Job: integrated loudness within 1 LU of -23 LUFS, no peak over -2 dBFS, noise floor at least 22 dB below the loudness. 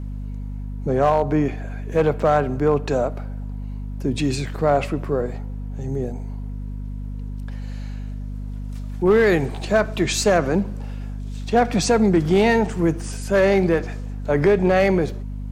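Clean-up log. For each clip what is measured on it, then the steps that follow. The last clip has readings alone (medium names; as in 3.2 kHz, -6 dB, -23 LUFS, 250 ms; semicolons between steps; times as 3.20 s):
clipped samples 0.9%; clipping level -9.5 dBFS; hum 50 Hz; highest harmonic 250 Hz; hum level -27 dBFS; loudness -20.5 LUFS; peak level -9.5 dBFS; loudness target -23.0 LUFS
-> clip repair -9.5 dBFS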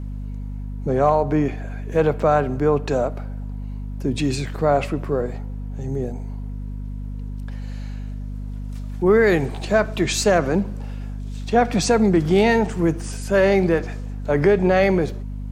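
clipped samples 0.0%; hum 50 Hz; highest harmonic 250 Hz; hum level -27 dBFS
-> hum notches 50/100/150/200/250 Hz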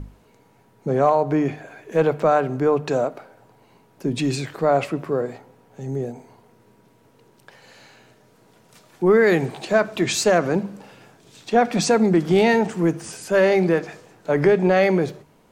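hum not found; loudness -20.5 LUFS; peak level -5.5 dBFS; loudness target -23.0 LUFS
-> trim -2.5 dB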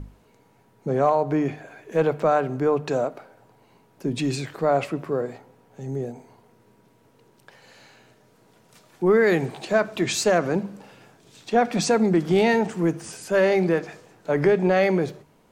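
loudness -23.0 LUFS; peak level -8.0 dBFS; noise floor -59 dBFS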